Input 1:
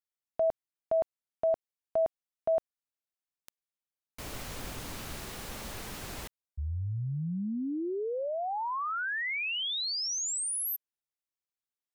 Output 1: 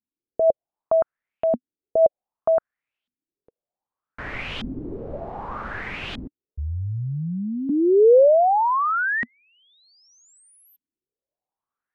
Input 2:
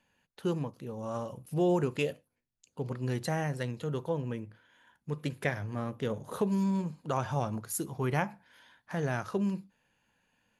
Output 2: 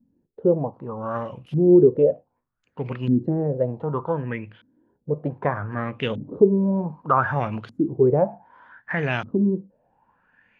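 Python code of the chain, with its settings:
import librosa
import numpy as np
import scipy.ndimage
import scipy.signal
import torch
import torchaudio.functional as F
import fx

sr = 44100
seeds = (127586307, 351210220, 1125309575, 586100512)

y = fx.filter_lfo_lowpass(x, sr, shape='saw_up', hz=0.65, low_hz=230.0, high_hz=3300.0, q=5.7)
y = y * 10.0 ** (6.0 / 20.0)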